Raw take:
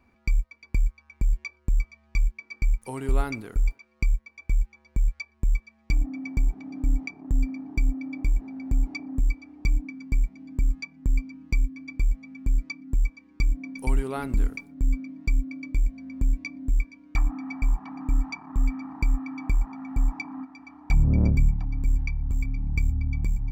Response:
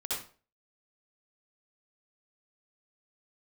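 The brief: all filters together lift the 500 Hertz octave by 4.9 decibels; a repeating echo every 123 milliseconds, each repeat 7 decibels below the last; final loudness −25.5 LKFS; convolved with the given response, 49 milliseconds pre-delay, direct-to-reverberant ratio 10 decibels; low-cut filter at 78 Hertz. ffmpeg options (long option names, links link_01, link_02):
-filter_complex "[0:a]highpass=78,equalizer=frequency=500:width_type=o:gain=6.5,aecho=1:1:123|246|369|492|615:0.447|0.201|0.0905|0.0407|0.0183,asplit=2[link_01][link_02];[1:a]atrim=start_sample=2205,adelay=49[link_03];[link_02][link_03]afir=irnorm=-1:irlink=0,volume=-14dB[link_04];[link_01][link_04]amix=inputs=2:normalize=0,volume=7.5dB"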